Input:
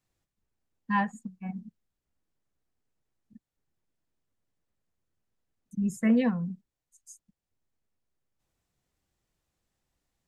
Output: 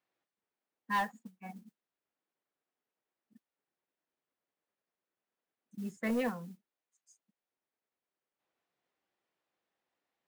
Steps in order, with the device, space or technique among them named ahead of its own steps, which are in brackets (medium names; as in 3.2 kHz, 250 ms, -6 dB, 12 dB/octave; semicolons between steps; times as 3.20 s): carbon microphone (band-pass 380–3100 Hz; saturation -25 dBFS, distortion -15 dB; modulation noise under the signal 23 dB)